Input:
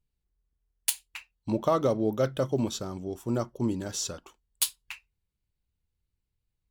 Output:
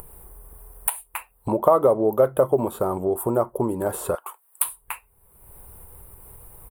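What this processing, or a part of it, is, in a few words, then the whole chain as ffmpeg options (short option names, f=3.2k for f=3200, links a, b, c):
upward and downward compression: -filter_complex "[0:a]equalizer=f=14k:w=2.7:g=5,acrossover=split=3700[a][b];[b]acompressor=threshold=-41dB:ratio=4:attack=1:release=60[c];[a][c]amix=inputs=2:normalize=0,acompressor=mode=upward:threshold=-28dB:ratio=2.5,acompressor=threshold=-29dB:ratio=3,firequalizer=gain_entry='entry(280,0);entry(390,10);entry(1000,13);entry(1600,1);entry(3000,-9);entry(5900,-21);entry(9100,15);entry(14000,13)':delay=0.05:min_phase=1,asettb=1/sr,asplit=3[d][e][f];[d]atrim=end=4.154[g];[e]atrim=start=4.15:end=4.65,asetpts=PTS-STARTPTS,afade=t=in:d=0.004:c=qsin,afade=t=out:st=0.496:d=0.004:c=qsin,highpass=1.2k[h];[f]atrim=start=4.646[i];[g][h]acrossfade=d=0.004:c1=hsin:c2=qsin[j];[j][i]acrossfade=d=0.004:c1=qsin:c2=hsin,volume=4.5dB"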